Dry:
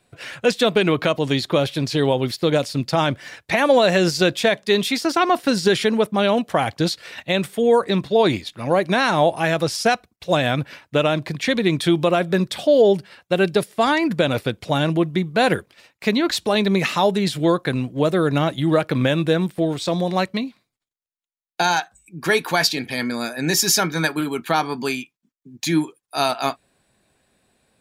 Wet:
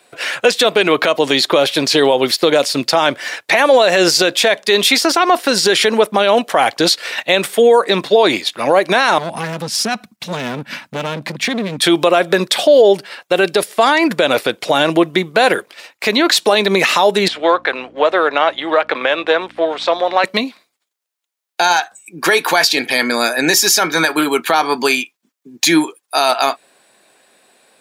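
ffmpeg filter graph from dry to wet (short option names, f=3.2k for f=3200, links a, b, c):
-filter_complex "[0:a]asettb=1/sr,asplit=3[a][b][c];[a]atrim=end=9.184[d];[b]atrim=start=9.18:end=11.82,asetpts=PTS-STARTPTS,afade=t=in:d=0.004:c=qsin,afade=t=out:st=2.636:d=0.004:c=qsin,lowshelf=f=290:t=q:w=3:g=11.5,acompressor=threshold=-28dB:ratio=2.5:attack=3.2:release=140:knee=1:detection=peak,aeval=exprs='clip(val(0),-1,0.0562)':c=same[e];[c]atrim=start=11.816[f];[d][e]acrossfade=d=0.004:c1=hsin:c2=qsin[g];[g][f]acrossfade=d=0.004:c1=qsin:c2=hsin,asettb=1/sr,asplit=3[h][i][j];[h]atrim=end=17.284[k];[i]atrim=start=17.28:end=20.24,asetpts=PTS-STARTPTS,afade=t=in:d=0.004:c=qsin,afade=t=out:st=2.956:d=0.004:c=qsin,aeval=exprs='if(lt(val(0),0),0.708*val(0),val(0))':c=same,highpass=570,lowpass=3k,aeval=exprs='val(0)+0.00794*(sin(2*PI*60*n/s)+sin(2*PI*2*60*n/s)/2+sin(2*PI*3*60*n/s)/3+sin(2*PI*4*60*n/s)/4+sin(2*PI*5*60*n/s)/5)':c=same[l];[j]atrim=start=20.236[m];[k][l]acrossfade=d=0.004:c1=hsin:c2=qsin[n];[n][m]acrossfade=d=0.004:c1=qsin:c2=hsin,highpass=410,acompressor=threshold=-21dB:ratio=2,alimiter=level_in=14.5dB:limit=-1dB:release=50:level=0:latency=1,volume=-1dB"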